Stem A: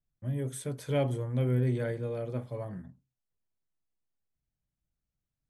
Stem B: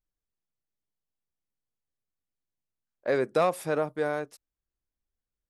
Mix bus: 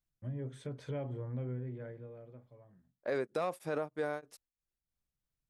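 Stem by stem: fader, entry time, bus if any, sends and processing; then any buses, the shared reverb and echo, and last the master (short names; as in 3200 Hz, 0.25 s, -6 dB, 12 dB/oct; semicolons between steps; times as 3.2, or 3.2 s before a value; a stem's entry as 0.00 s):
-4.5 dB, 0.00 s, no send, compressor 5:1, threshold -31 dBFS, peak gain reduction 7.5 dB; treble ducked by the level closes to 1900 Hz, closed at -31.5 dBFS; auto duck -23 dB, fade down 1.50 s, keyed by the second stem
-3.0 dB, 0.00 s, no send, beating tremolo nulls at 3.2 Hz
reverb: off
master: limiter -25 dBFS, peak gain reduction 8.5 dB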